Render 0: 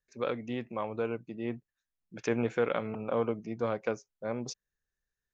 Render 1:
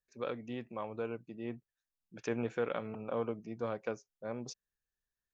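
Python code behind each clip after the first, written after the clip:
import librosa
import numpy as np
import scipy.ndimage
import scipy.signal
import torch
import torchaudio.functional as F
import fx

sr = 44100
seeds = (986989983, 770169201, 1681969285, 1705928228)

y = fx.notch(x, sr, hz=2100.0, q=17.0)
y = y * 10.0 ** (-5.5 / 20.0)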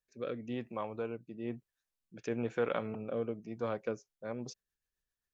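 y = fx.rotary_switch(x, sr, hz=1.0, then_hz=7.5, switch_at_s=3.6)
y = y * 10.0 ** (3.0 / 20.0)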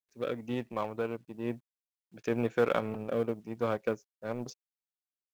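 y = fx.law_mismatch(x, sr, coded='A')
y = y * 10.0 ** (6.5 / 20.0)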